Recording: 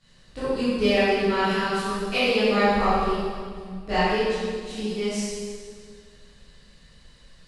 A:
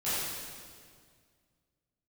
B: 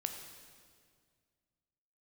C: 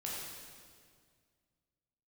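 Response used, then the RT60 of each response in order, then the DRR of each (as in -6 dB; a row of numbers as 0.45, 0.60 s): A; 2.0, 2.0, 2.0 s; -14.5, 4.5, -5.5 dB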